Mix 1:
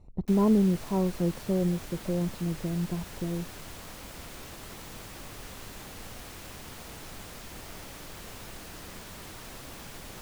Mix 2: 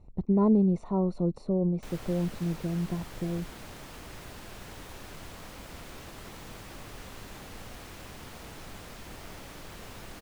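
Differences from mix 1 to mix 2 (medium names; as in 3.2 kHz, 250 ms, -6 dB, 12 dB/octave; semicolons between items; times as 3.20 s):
background: entry +1.55 s; master: add treble shelf 4.8 kHz -6 dB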